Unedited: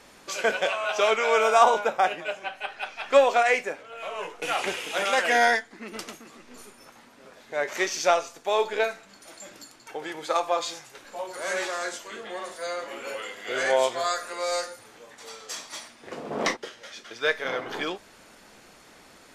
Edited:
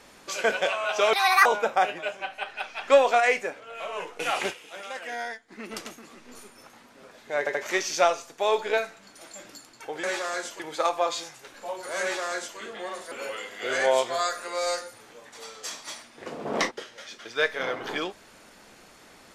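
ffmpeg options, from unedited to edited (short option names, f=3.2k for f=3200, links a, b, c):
-filter_complex "[0:a]asplit=10[a][b][c][d][e][f][g][h][i][j];[a]atrim=end=1.134[k];[b]atrim=start=1.13:end=1.68,asetpts=PTS-STARTPTS,asetrate=74529,aresample=44100,atrim=end_sample=14352,asetpts=PTS-STARTPTS[l];[c]atrim=start=1.676:end=4.97,asetpts=PTS-STARTPTS,afade=t=out:st=3.044:d=0.25:c=exp:silence=0.211349[m];[d]atrim=start=4.97:end=5.5,asetpts=PTS-STARTPTS,volume=-13.5dB[n];[e]atrim=start=5.5:end=7.692,asetpts=PTS-STARTPTS,afade=t=in:d=0.25:c=exp:silence=0.211349[o];[f]atrim=start=7.608:end=7.692[p];[g]atrim=start=7.608:end=10.102[q];[h]atrim=start=11.518:end=12.082[r];[i]atrim=start=10.098:end=12.622[s];[j]atrim=start=12.968[t];[k][l]acrossfade=d=0.004:c1=hsin:c2=hsin[u];[m][n][o]concat=n=3:v=0:a=1[v];[u][v]acrossfade=d=0.004:c1=hsin:c2=hsin[w];[w][p]acrossfade=d=0.004:c1=hsin:c2=hsin[x];[x][q]acrossfade=d=0.004:c1=hsin:c2=hsin[y];[y][r]acrossfade=d=0.004:c1=hsin:c2=hsin[z];[z][s]acrossfade=d=0.004:c1=hsin:c2=hsin[aa];[aa][t]acrossfade=d=0.004:c1=hsin:c2=hsin"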